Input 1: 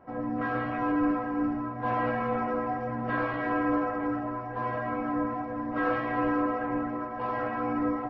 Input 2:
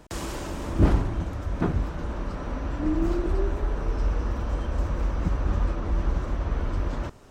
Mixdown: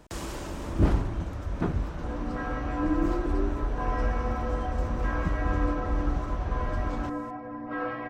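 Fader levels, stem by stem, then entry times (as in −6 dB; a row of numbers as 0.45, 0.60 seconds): −4.5, −3.0 decibels; 1.95, 0.00 seconds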